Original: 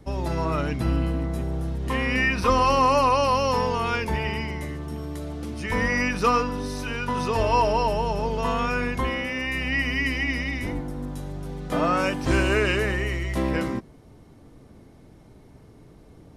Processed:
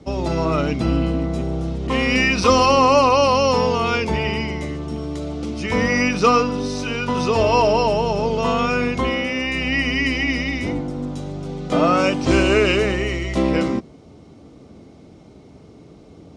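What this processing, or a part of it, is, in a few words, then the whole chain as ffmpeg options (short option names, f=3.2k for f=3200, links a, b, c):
car door speaker: -filter_complex "[0:a]highpass=84,equalizer=f=120:t=q:w=4:g=-7,equalizer=f=960:t=q:w=4:g=-5,equalizer=f=1.7k:t=q:w=4:g=-10,lowpass=f=7.5k:w=0.5412,lowpass=f=7.5k:w=1.3066,asettb=1/sr,asplit=3[a][b][c];[a]atrim=end=1.874[d];[b]atrim=start=1.87:end=2.66,asetpts=PTS-STARTPTS,afade=t=in:d=0.004:c=qsin,afade=t=out:st=0.786:d=0.004:c=qsin,adynamicequalizer=threshold=0.0112:dfrequency=3500:dqfactor=0.7:tfrequency=3500:tqfactor=0.7:attack=5:release=100:ratio=0.375:range=3:mode=boostabove:tftype=highshelf[e];[c]atrim=start=2.656[f];[d][e]acrossfade=d=0.004:c1=hsin:c2=qsin[g];[g][f]acrossfade=d=0.004:c1=qsin:c2=hsin,volume=7.5dB"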